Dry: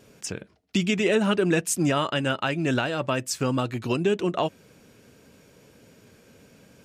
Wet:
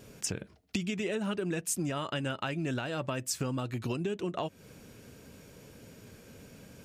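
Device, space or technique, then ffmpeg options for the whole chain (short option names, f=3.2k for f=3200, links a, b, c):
ASMR close-microphone chain: -af "lowshelf=f=120:g=8,acompressor=threshold=-31dB:ratio=6,highshelf=f=9.1k:g=5.5"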